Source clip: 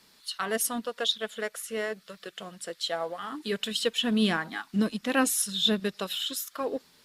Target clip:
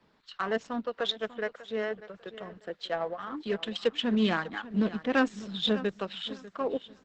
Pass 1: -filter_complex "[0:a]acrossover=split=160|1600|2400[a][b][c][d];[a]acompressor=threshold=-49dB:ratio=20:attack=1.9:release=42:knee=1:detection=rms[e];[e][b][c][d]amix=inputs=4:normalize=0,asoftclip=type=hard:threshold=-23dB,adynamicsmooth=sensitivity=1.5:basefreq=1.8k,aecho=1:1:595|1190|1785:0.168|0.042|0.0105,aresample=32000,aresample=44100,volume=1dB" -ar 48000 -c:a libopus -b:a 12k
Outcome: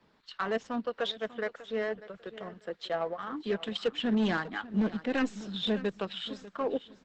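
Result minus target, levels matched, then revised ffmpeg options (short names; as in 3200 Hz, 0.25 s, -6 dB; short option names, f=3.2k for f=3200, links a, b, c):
hard clip: distortion +21 dB
-filter_complex "[0:a]acrossover=split=160|1600|2400[a][b][c][d];[a]acompressor=threshold=-49dB:ratio=20:attack=1.9:release=42:knee=1:detection=rms[e];[e][b][c][d]amix=inputs=4:normalize=0,asoftclip=type=hard:threshold=-12dB,adynamicsmooth=sensitivity=1.5:basefreq=1.8k,aecho=1:1:595|1190|1785:0.168|0.042|0.0105,aresample=32000,aresample=44100,volume=1dB" -ar 48000 -c:a libopus -b:a 12k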